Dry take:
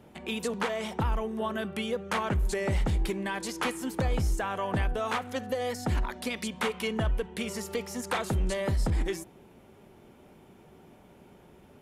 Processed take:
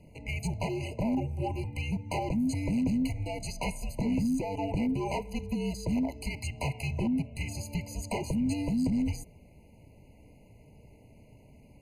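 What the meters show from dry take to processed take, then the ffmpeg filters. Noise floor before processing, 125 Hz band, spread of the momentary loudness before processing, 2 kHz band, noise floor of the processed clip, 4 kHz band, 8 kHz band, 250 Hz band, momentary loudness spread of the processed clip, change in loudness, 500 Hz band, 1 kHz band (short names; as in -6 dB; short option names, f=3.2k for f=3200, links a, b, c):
-56 dBFS, -0.5 dB, 5 LU, -6.5 dB, -56 dBFS, -6.0 dB, -3.0 dB, +5.5 dB, 8 LU, -1.0 dB, -5.5 dB, -5.0 dB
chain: -af "volume=25dB,asoftclip=hard,volume=-25dB,afreqshift=-300,afftfilt=real='re*eq(mod(floor(b*sr/1024/1000),2),0)':imag='im*eq(mod(floor(b*sr/1024/1000),2),0)':win_size=1024:overlap=0.75"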